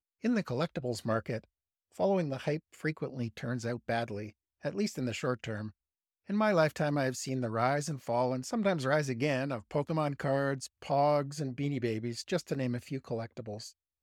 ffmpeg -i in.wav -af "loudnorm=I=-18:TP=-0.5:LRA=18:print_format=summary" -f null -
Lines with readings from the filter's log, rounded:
Input Integrated:    -33.4 LUFS
Input True Peak:     -14.5 dBTP
Input LRA:             4.0 LU
Input Threshold:     -43.7 LUFS